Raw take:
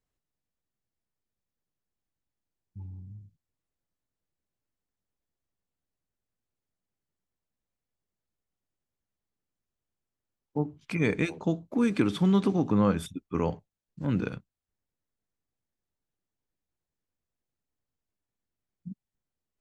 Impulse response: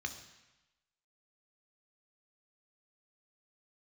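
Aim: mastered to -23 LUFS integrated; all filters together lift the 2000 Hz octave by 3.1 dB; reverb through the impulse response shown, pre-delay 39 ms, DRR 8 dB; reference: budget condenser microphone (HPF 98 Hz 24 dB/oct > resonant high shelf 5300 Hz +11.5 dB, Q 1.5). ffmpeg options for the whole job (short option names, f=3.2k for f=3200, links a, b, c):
-filter_complex "[0:a]equalizer=f=2k:t=o:g=5.5,asplit=2[a][b];[1:a]atrim=start_sample=2205,adelay=39[c];[b][c]afir=irnorm=-1:irlink=0,volume=-9dB[d];[a][d]amix=inputs=2:normalize=0,highpass=f=98:w=0.5412,highpass=f=98:w=1.3066,highshelf=f=5.3k:t=q:w=1.5:g=11.5,volume=4.5dB"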